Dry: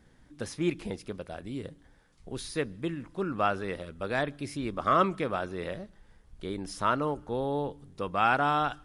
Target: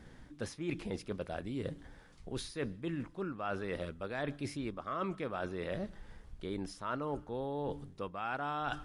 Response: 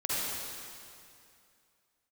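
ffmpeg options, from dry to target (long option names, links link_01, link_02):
-af "highshelf=frequency=8500:gain=-7.5,areverse,acompressor=threshold=-41dB:ratio=8,areverse,volume=6dB"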